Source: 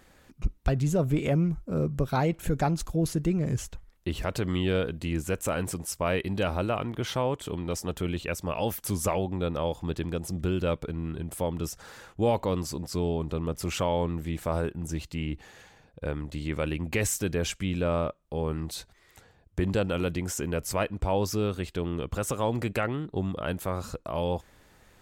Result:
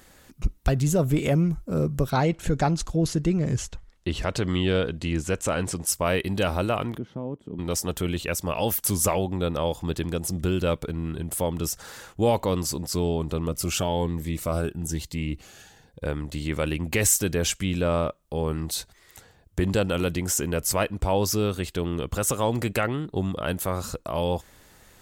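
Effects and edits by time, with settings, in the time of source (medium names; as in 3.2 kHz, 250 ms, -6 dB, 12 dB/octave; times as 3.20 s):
2.10–5.87 s: low-pass 6.6 kHz
6.98–7.59 s: band-pass filter 220 Hz, Q 1.8
13.49–16.04 s: Shepard-style phaser rising 1.1 Hz
whole clip: treble shelf 4.7 kHz +8.5 dB; band-stop 2.4 kHz, Q 30; trim +3 dB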